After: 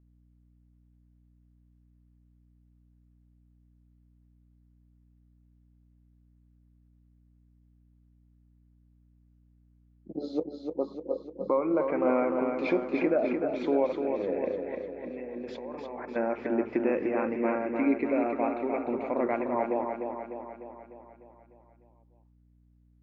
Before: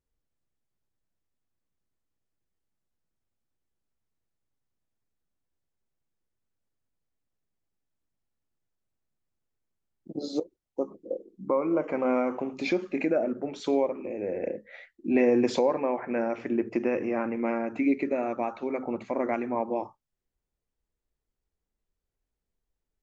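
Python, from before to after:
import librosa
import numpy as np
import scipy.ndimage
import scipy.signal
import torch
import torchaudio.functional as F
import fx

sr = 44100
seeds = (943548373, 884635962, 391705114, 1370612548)

y = fx.highpass(x, sr, hz=170.0, slope=6)
y = fx.level_steps(y, sr, step_db=20, at=(14.75, 16.16))
y = scipy.signal.sosfilt(scipy.signal.butter(2, 2500.0, 'lowpass', fs=sr, output='sos'), y)
y = fx.echo_feedback(y, sr, ms=300, feedback_pct=57, wet_db=-5.5)
y = fx.add_hum(y, sr, base_hz=60, snr_db=29)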